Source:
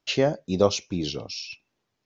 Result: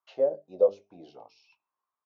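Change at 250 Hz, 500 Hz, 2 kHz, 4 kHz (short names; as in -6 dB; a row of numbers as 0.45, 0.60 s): -19.5 dB, -1.5 dB, under -25 dB, under -25 dB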